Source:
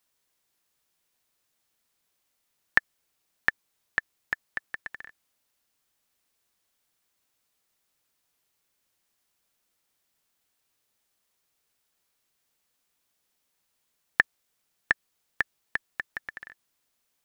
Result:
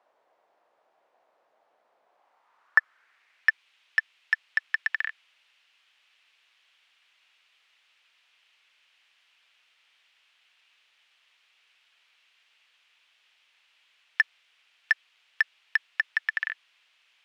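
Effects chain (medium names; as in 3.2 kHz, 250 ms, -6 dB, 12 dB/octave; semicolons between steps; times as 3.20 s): overdrive pedal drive 29 dB, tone 1.4 kHz, clips at -2.5 dBFS; band-pass sweep 650 Hz -> 2.8 kHz, 2.05–3.61 s; trim +5.5 dB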